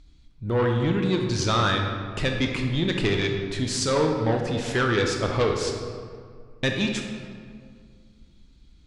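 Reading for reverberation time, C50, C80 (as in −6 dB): 2.1 s, 3.5 dB, 5.0 dB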